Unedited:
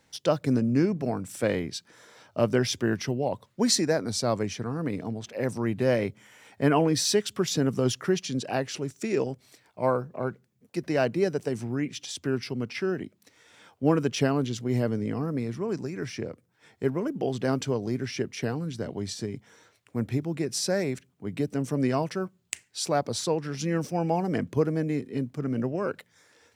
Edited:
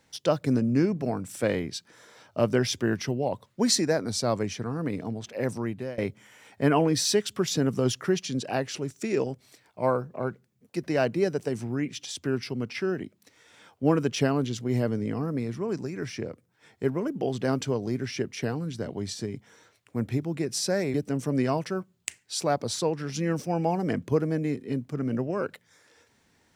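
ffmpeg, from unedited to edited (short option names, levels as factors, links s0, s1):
-filter_complex "[0:a]asplit=3[s0][s1][s2];[s0]atrim=end=5.98,asetpts=PTS-STARTPTS,afade=t=out:st=5.51:d=0.47:silence=0.0794328[s3];[s1]atrim=start=5.98:end=20.942,asetpts=PTS-STARTPTS,afade=t=in:d=0.004:c=hsin:silence=0.0794328[s4];[s2]atrim=start=21.388[s5];[s3][s4]concat=n=2:v=0:a=1[s6];[s6][s5]acrossfade=d=0.004:c1=hsin:c2=hsin"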